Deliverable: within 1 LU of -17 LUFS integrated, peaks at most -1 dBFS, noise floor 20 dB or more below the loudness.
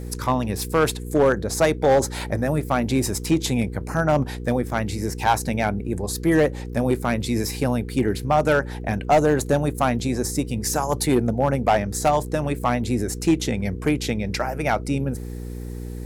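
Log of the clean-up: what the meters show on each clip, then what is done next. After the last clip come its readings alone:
clipped 0.7%; flat tops at -11.0 dBFS; hum 60 Hz; harmonics up to 480 Hz; hum level -29 dBFS; loudness -22.5 LUFS; peak -11.0 dBFS; loudness target -17.0 LUFS
-> clip repair -11 dBFS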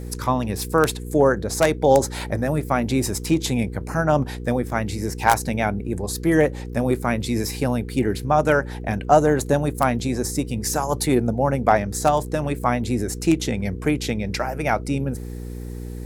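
clipped 0.0%; hum 60 Hz; harmonics up to 480 Hz; hum level -29 dBFS
-> de-hum 60 Hz, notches 8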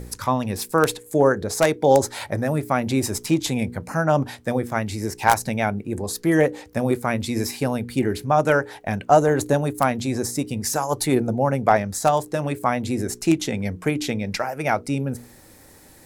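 hum none; loudness -22.5 LUFS; peak -2.0 dBFS; loudness target -17.0 LUFS
-> gain +5.5 dB; limiter -1 dBFS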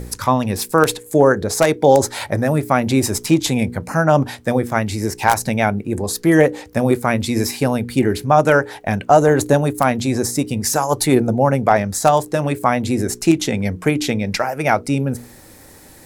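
loudness -17.5 LUFS; peak -1.0 dBFS; noise floor -43 dBFS

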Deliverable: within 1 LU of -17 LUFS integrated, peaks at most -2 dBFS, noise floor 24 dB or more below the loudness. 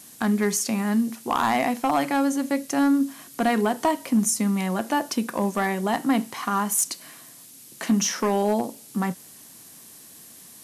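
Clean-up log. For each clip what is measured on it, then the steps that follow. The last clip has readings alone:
clipped 0.6%; flat tops at -14.0 dBFS; noise floor -47 dBFS; noise floor target -48 dBFS; loudness -24.0 LUFS; peak -14.0 dBFS; loudness target -17.0 LUFS
-> clip repair -14 dBFS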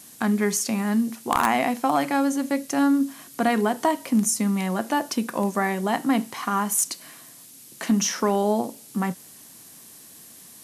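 clipped 0.0%; noise floor -47 dBFS; noise floor target -48 dBFS
-> noise print and reduce 6 dB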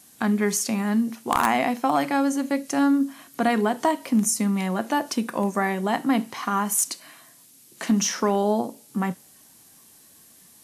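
noise floor -53 dBFS; loudness -24.0 LUFS; peak -5.0 dBFS; loudness target -17.0 LUFS
-> gain +7 dB; limiter -2 dBFS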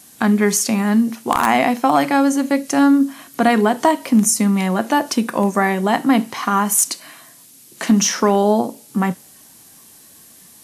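loudness -17.0 LUFS; peak -2.0 dBFS; noise floor -46 dBFS

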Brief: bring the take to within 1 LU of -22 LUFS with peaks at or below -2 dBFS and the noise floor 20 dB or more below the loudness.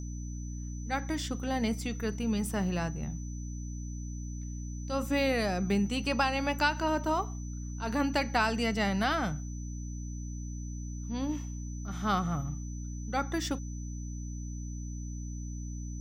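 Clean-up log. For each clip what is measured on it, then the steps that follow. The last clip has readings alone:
hum 60 Hz; harmonics up to 300 Hz; hum level -36 dBFS; steady tone 6000 Hz; tone level -50 dBFS; loudness -33.0 LUFS; peak -14.0 dBFS; loudness target -22.0 LUFS
-> notches 60/120/180/240/300 Hz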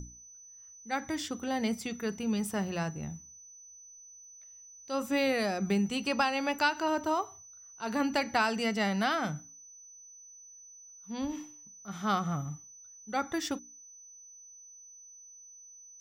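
hum none; steady tone 6000 Hz; tone level -50 dBFS
-> notch 6000 Hz, Q 30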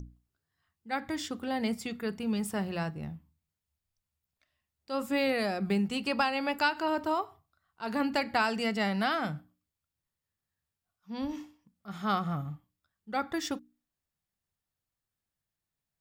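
steady tone none; loudness -32.0 LUFS; peak -14.0 dBFS; loudness target -22.0 LUFS
-> gain +10 dB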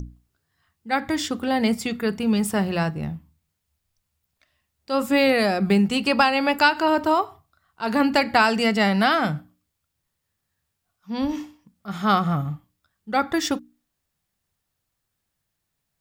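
loudness -22.0 LUFS; peak -4.0 dBFS; noise floor -79 dBFS

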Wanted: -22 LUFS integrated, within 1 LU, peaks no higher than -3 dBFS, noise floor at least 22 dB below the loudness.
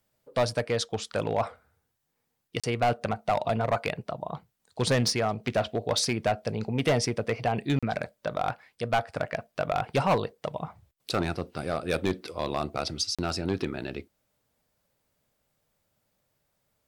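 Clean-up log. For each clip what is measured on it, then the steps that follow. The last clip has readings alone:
clipped 0.8%; flat tops at -18.5 dBFS; dropouts 3; longest dropout 36 ms; loudness -29.5 LUFS; peak -18.5 dBFS; loudness target -22.0 LUFS
-> clip repair -18.5 dBFS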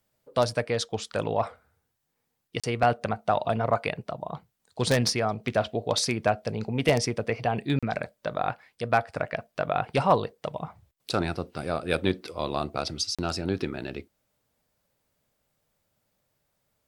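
clipped 0.0%; dropouts 3; longest dropout 36 ms
-> interpolate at 2.6/7.79/13.15, 36 ms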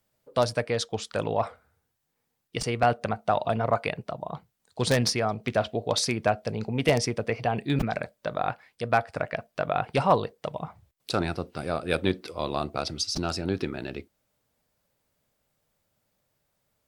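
dropouts 0; loudness -28.0 LUFS; peak -9.5 dBFS; loudness target -22.0 LUFS
-> gain +6 dB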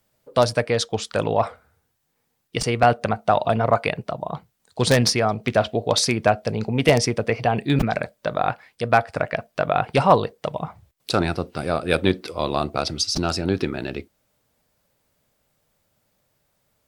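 loudness -22.0 LUFS; peak -3.5 dBFS; noise floor -72 dBFS

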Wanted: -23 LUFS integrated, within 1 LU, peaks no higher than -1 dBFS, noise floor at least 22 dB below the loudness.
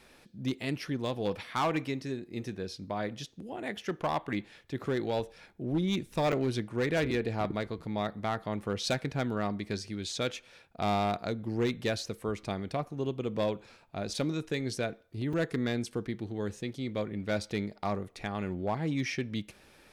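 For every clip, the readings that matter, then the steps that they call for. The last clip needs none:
clipped 0.9%; flat tops at -23.0 dBFS; dropouts 2; longest dropout 5.2 ms; loudness -33.5 LUFS; peak -23.0 dBFS; loudness target -23.0 LUFS
-> clip repair -23 dBFS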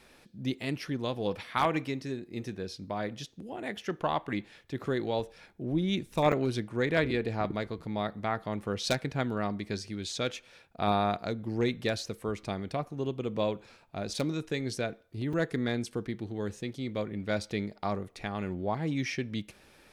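clipped 0.0%; dropouts 2; longest dropout 5.2 ms
-> interpolate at 6.32/15.33, 5.2 ms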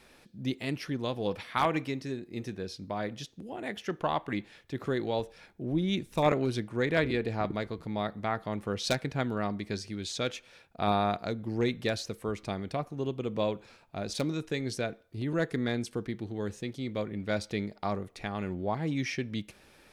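dropouts 0; loudness -33.0 LUFS; peak -14.0 dBFS; loudness target -23.0 LUFS
-> gain +10 dB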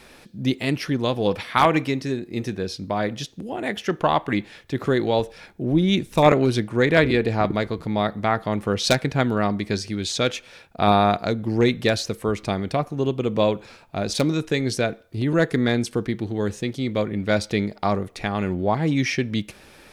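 loudness -23.0 LUFS; peak -4.0 dBFS; noise floor -49 dBFS

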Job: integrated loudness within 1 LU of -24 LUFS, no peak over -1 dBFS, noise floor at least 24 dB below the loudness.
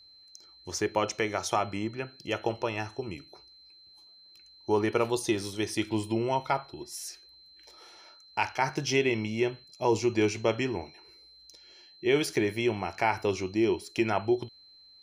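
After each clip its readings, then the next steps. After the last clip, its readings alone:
steady tone 4100 Hz; tone level -53 dBFS; loudness -29.5 LUFS; peak -11.0 dBFS; loudness target -24.0 LUFS
-> notch 4100 Hz, Q 30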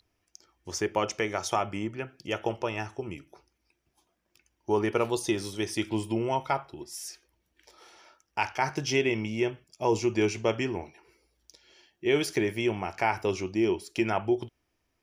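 steady tone none; loudness -29.5 LUFS; peak -11.5 dBFS; loudness target -24.0 LUFS
-> gain +5.5 dB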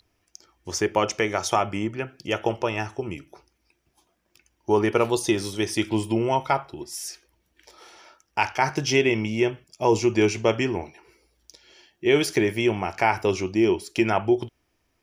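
loudness -24.0 LUFS; peak -6.0 dBFS; noise floor -72 dBFS

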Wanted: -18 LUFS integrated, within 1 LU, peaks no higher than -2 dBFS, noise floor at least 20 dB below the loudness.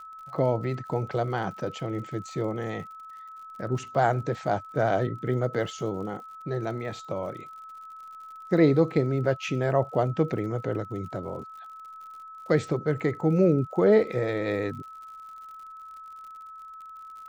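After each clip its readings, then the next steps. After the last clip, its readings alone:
ticks 61/s; steady tone 1300 Hz; tone level -41 dBFS; loudness -27.0 LUFS; peak -8.5 dBFS; loudness target -18.0 LUFS
-> de-click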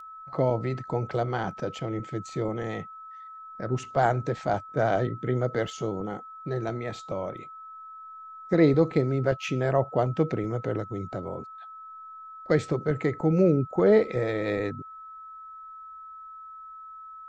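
ticks 0.29/s; steady tone 1300 Hz; tone level -41 dBFS
-> notch 1300 Hz, Q 30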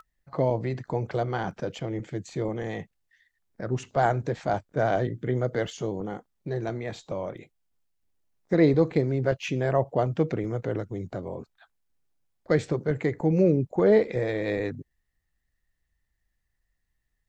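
steady tone none; loudness -27.0 LUFS; peak -9.0 dBFS; loudness target -18.0 LUFS
-> gain +9 dB; limiter -2 dBFS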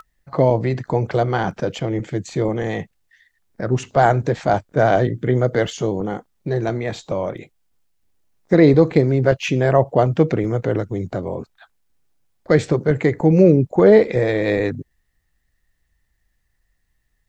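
loudness -18.5 LUFS; peak -2.0 dBFS; noise floor -69 dBFS

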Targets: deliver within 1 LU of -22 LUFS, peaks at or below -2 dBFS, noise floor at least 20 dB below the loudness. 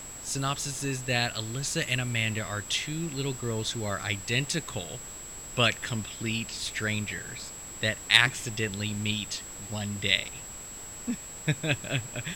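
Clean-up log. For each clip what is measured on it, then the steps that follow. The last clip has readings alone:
steady tone 7700 Hz; tone level -41 dBFS; noise floor -42 dBFS; noise floor target -49 dBFS; loudness -29.0 LUFS; peak -5.0 dBFS; loudness target -22.0 LUFS
-> notch 7700 Hz, Q 30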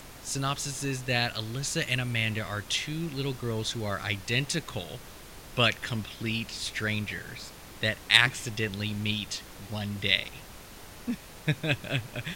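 steady tone none; noise floor -47 dBFS; noise floor target -50 dBFS
-> noise print and reduce 6 dB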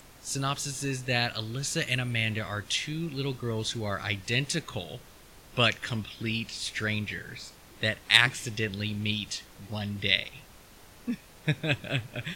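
noise floor -53 dBFS; loudness -29.5 LUFS; peak -5.0 dBFS; loudness target -22.0 LUFS
-> gain +7.5 dB; limiter -2 dBFS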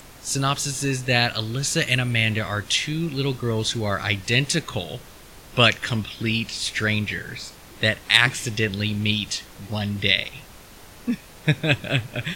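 loudness -22.5 LUFS; peak -2.0 dBFS; noise floor -45 dBFS

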